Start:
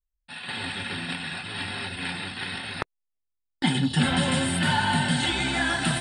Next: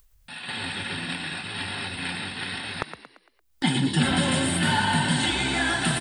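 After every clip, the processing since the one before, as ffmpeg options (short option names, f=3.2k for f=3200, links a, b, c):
-filter_complex "[0:a]highshelf=f=8.1k:g=4,acompressor=mode=upward:threshold=-41dB:ratio=2.5,asplit=2[a][b];[b]asplit=5[c][d][e][f][g];[c]adelay=114,afreqshift=59,volume=-10dB[h];[d]adelay=228,afreqshift=118,volume=-17.1dB[i];[e]adelay=342,afreqshift=177,volume=-24.3dB[j];[f]adelay=456,afreqshift=236,volume=-31.4dB[k];[g]adelay=570,afreqshift=295,volume=-38.5dB[l];[h][i][j][k][l]amix=inputs=5:normalize=0[m];[a][m]amix=inputs=2:normalize=0"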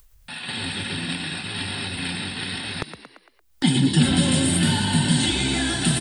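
-filter_complex "[0:a]acrossover=split=440|3000[a][b][c];[b]acompressor=threshold=-43dB:ratio=2.5[d];[a][d][c]amix=inputs=3:normalize=0,volume=5.5dB"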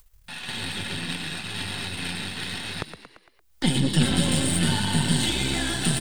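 -af "aeval=exprs='if(lt(val(0),0),0.447*val(0),val(0))':c=same,equalizer=f=270:w=4.5:g=-3.5"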